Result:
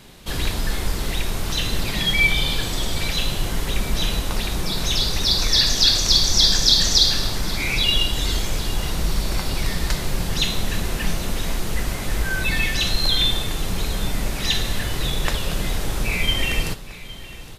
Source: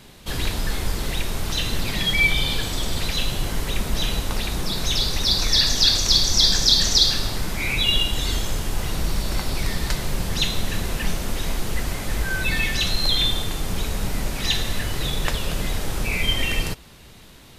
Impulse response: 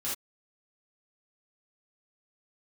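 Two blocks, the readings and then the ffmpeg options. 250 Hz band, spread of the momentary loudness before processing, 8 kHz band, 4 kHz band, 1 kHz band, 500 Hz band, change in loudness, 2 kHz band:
+1.0 dB, 12 LU, +1.0 dB, +1.0 dB, +1.0 dB, +1.0 dB, +1.0 dB, +1.0 dB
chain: -filter_complex "[0:a]aecho=1:1:813|1626|2439|3252|4065:0.133|0.076|0.0433|0.0247|0.0141,asplit=2[a][b];[1:a]atrim=start_sample=2205[c];[b][c]afir=irnorm=-1:irlink=0,volume=-15.5dB[d];[a][d]amix=inputs=2:normalize=0"

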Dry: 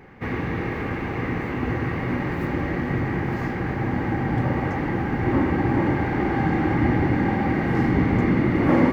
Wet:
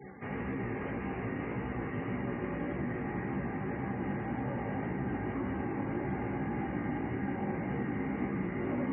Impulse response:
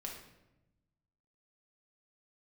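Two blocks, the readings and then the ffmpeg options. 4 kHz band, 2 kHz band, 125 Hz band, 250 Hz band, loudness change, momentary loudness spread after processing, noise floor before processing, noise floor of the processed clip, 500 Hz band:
under -15 dB, -13.0 dB, -14.0 dB, -12.0 dB, -12.5 dB, 2 LU, -29 dBFS, -38 dBFS, -11.5 dB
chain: -filter_complex "[0:a]acrossover=split=170|860|3100[a][b][c][d];[a]acompressor=threshold=-33dB:ratio=4[e];[b]acompressor=threshold=-27dB:ratio=4[f];[c]acompressor=threshold=-38dB:ratio=4[g];[d]acompressor=threshold=-57dB:ratio=4[h];[e][f][g][h]amix=inputs=4:normalize=0,highpass=73[i];[1:a]atrim=start_sample=2205[j];[i][j]afir=irnorm=-1:irlink=0,flanger=delay=15:depth=4.6:speed=1.8,afftfilt=real='re*gte(hypot(re,im),0.00282)':imag='im*gte(hypot(re,im),0.00282)':win_size=1024:overlap=0.75,areverse,acompressor=mode=upward:threshold=-28dB:ratio=2.5,areverse,volume=-3.5dB"

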